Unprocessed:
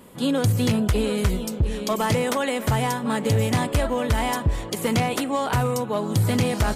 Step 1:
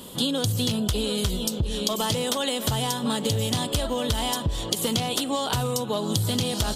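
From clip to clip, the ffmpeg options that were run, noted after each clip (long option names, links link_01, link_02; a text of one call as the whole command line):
ffmpeg -i in.wav -af "highshelf=frequency=2700:width_type=q:width=3:gain=6.5,acompressor=threshold=-27dB:ratio=6,volume=4.5dB" out.wav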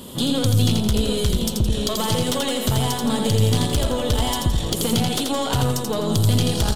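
ffmpeg -i in.wav -af "lowshelf=frequency=340:gain=5.5,aeval=exprs='(tanh(5.62*val(0)+0.45)-tanh(0.45))/5.62':channel_layout=same,aecho=1:1:84|168|252|336|420:0.631|0.265|0.111|0.0467|0.0196,volume=3dB" out.wav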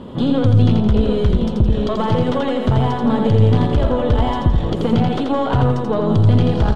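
ffmpeg -i in.wav -af "lowpass=1600,volume=5.5dB" out.wav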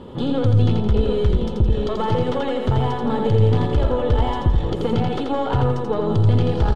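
ffmpeg -i in.wav -af "aecho=1:1:2.3:0.34,volume=-3.5dB" out.wav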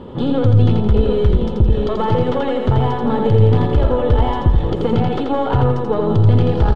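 ffmpeg -i in.wav -af "lowpass=frequency=3000:poles=1,volume=4dB" out.wav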